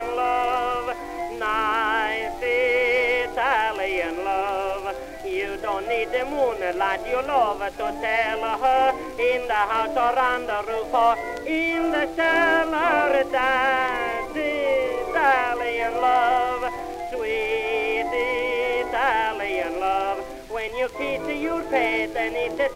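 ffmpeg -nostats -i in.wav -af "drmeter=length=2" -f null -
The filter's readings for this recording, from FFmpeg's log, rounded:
Channel 1: DR: 10.6
Overall DR: 10.6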